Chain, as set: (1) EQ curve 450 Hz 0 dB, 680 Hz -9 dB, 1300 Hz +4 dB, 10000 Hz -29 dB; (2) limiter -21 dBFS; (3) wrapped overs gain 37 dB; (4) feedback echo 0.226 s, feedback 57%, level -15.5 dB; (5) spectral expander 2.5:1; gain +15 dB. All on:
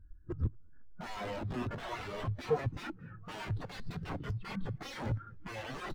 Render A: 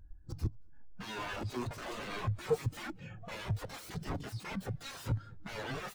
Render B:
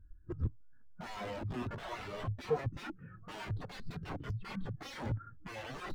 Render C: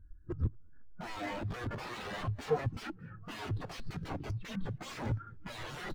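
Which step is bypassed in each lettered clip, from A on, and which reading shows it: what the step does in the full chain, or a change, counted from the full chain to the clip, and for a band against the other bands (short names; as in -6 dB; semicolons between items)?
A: 1, 8 kHz band +6.5 dB; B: 4, loudness change -2.0 LU; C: 2, 8 kHz band +2.5 dB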